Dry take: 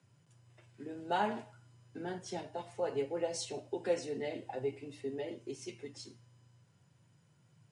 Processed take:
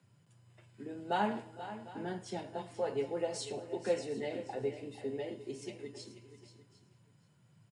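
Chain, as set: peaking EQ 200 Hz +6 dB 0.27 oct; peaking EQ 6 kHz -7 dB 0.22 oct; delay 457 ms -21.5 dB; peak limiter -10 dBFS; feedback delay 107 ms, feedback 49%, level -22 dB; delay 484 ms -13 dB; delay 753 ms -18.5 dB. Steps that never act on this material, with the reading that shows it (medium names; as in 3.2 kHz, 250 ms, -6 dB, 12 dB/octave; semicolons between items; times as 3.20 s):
peak limiter -10 dBFS: peak at its input -20.5 dBFS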